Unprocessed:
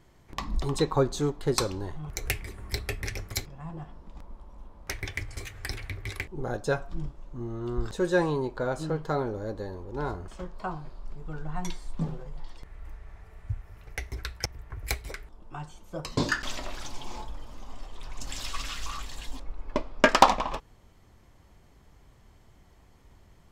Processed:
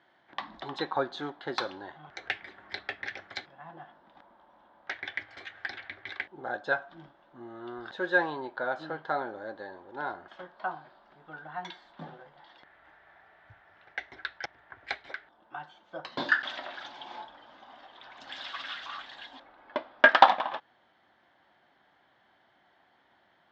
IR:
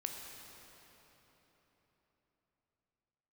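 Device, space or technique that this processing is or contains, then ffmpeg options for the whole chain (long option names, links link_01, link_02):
phone earpiece: -af "highpass=420,equalizer=frequency=440:width_type=q:width=4:gain=-10,equalizer=frequency=760:width_type=q:width=4:gain=4,equalizer=frequency=1100:width_type=q:width=4:gain=-4,equalizer=frequency=1600:width_type=q:width=4:gain=8,equalizer=frequency=2500:width_type=q:width=4:gain=-6,equalizer=frequency=3500:width_type=q:width=4:gain=5,lowpass=frequency=3600:width=0.5412,lowpass=frequency=3600:width=1.3066"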